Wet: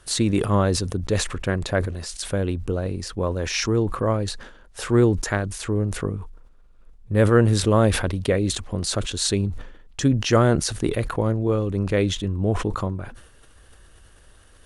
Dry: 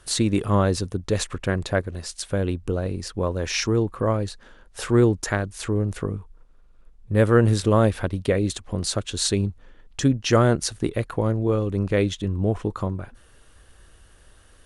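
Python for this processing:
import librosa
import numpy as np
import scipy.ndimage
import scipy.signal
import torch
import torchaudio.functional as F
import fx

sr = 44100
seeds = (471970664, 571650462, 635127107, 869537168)

y = fx.sustainer(x, sr, db_per_s=72.0)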